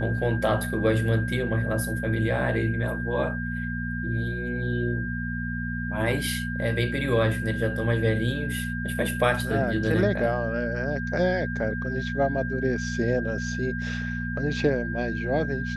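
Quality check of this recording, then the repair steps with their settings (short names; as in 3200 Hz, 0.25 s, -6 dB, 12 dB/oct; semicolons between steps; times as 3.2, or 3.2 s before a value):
hum 60 Hz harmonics 4 -31 dBFS
tone 1600 Hz -33 dBFS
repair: notch 1600 Hz, Q 30; de-hum 60 Hz, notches 4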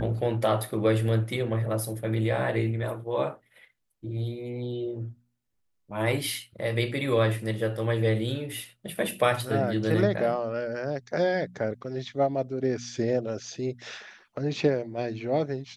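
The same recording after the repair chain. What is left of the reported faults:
none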